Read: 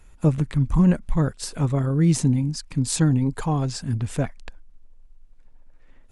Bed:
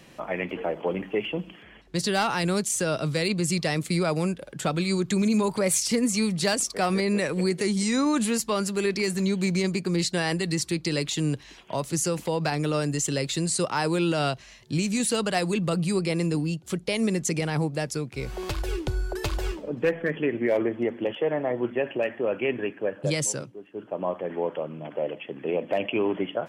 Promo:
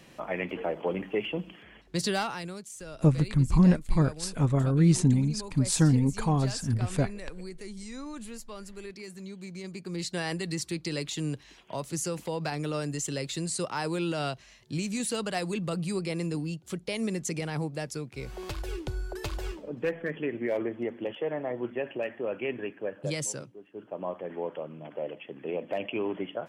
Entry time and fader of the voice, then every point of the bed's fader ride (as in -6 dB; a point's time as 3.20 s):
2.80 s, -2.5 dB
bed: 2.10 s -2.5 dB
2.60 s -17 dB
9.51 s -17 dB
10.18 s -6 dB